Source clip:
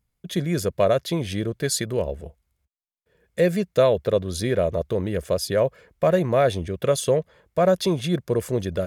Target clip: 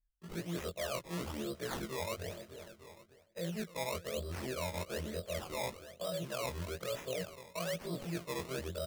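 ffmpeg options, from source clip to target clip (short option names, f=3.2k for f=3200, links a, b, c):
-filter_complex "[0:a]afftfilt=real='re':imag='-im':win_size=2048:overlap=0.75,anlmdn=0.0251,equalizer=f=125:t=o:w=0.33:g=-10,equalizer=f=250:t=o:w=0.33:g=-4,equalizer=f=630:t=o:w=0.33:g=9,equalizer=f=1.25k:t=o:w=0.33:g=11,acrossover=split=260[a][b];[b]acompressor=threshold=-31dB:ratio=2.5[c];[a][c]amix=inputs=2:normalize=0,acrossover=split=260|1600[d][e][f];[e]crystalizer=i=2:c=0[g];[d][g][f]amix=inputs=3:normalize=0,aecho=1:1:299|598|897|1196|1495:0.1|0.059|0.0348|0.0205|0.0121,areverse,acompressor=threshold=-42dB:ratio=4,areverse,acrusher=samples=20:mix=1:aa=0.000001:lfo=1:lforange=20:lforate=1.1,adynamicequalizer=threshold=0.001:dfrequency=2100:dqfactor=0.7:tfrequency=2100:tqfactor=0.7:attack=5:release=100:ratio=0.375:range=1.5:mode=boostabove:tftype=highshelf,volume=3dB"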